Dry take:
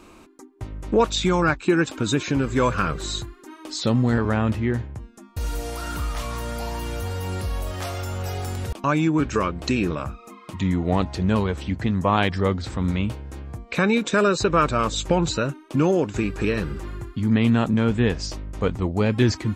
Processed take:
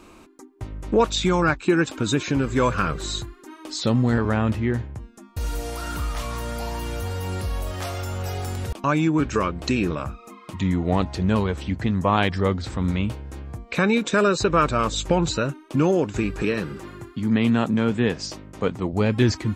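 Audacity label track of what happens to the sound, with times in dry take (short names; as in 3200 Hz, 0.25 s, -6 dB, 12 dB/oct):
16.420000	18.930000	HPF 130 Hz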